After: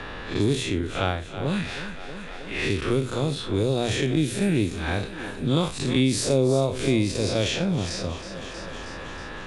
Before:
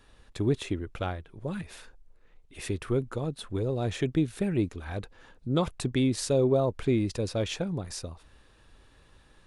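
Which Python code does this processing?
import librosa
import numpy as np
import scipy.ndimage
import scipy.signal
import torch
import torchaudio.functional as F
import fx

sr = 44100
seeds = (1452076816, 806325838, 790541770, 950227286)

p1 = fx.spec_blur(x, sr, span_ms=103.0)
p2 = fx.env_lowpass(p1, sr, base_hz=1900.0, full_db=-26.5)
p3 = fx.high_shelf(p2, sr, hz=2200.0, db=11.0)
p4 = fx.hum_notches(p3, sr, base_hz=60, count=2)
p5 = p4 + fx.echo_thinned(p4, sr, ms=318, feedback_pct=52, hz=150.0, wet_db=-16.5, dry=0)
p6 = fx.band_squash(p5, sr, depth_pct=70)
y = F.gain(torch.from_numpy(p6), 7.0).numpy()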